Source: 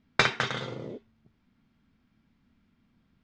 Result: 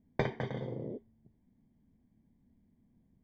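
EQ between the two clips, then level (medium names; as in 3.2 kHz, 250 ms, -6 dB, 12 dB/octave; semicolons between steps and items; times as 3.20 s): boxcar filter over 33 samples; 0.0 dB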